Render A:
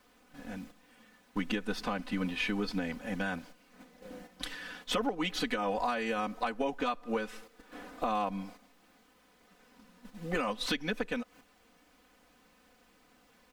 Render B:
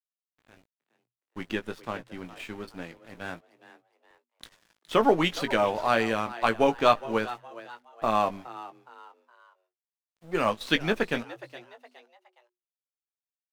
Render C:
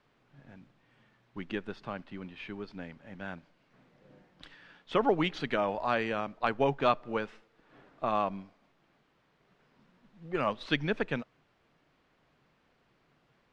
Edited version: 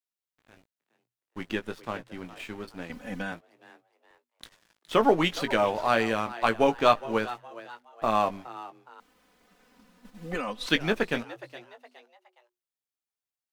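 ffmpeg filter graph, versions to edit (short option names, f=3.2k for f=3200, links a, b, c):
-filter_complex "[0:a]asplit=2[a][b];[1:a]asplit=3[c][d][e];[c]atrim=end=2.902[f];[a]atrim=start=2.898:end=3.322[g];[d]atrim=start=3.318:end=9.002[h];[b]atrim=start=8.998:end=10.692[i];[e]atrim=start=10.688[j];[f][g]acrossfade=d=0.004:c1=hsin:c2=hsin[k];[k][h]acrossfade=d=0.004:c1=hsin:c2=hsin[l];[l][i]acrossfade=d=0.004:c1=hsin:c2=hsin[m];[m][j]acrossfade=d=0.004:c1=hsin:c2=hsin"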